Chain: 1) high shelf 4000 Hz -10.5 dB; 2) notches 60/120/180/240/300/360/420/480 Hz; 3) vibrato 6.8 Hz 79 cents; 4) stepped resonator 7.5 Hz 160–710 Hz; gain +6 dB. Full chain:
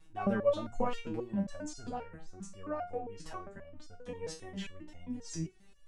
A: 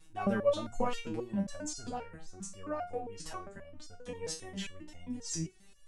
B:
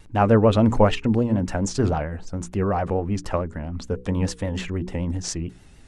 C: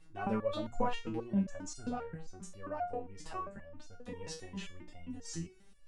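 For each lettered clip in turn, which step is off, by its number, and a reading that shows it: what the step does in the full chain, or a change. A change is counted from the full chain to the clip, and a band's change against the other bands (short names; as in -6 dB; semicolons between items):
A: 1, 8 kHz band +7.5 dB; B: 4, crest factor change -2.5 dB; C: 3, 500 Hz band -4.0 dB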